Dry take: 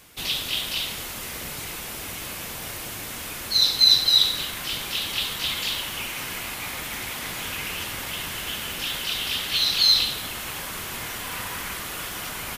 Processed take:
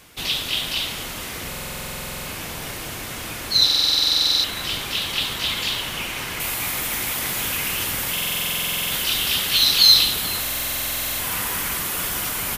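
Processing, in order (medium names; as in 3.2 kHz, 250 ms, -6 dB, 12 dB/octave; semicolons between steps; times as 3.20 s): treble shelf 8.2 kHz -4.5 dB, from 6.40 s +9.5 dB; filtered feedback delay 435 ms, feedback 78%, low-pass 890 Hz, level -7 dB; buffer glitch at 1.48/3.65/8.13/10.41 s, samples 2048, times 16; trim +3.5 dB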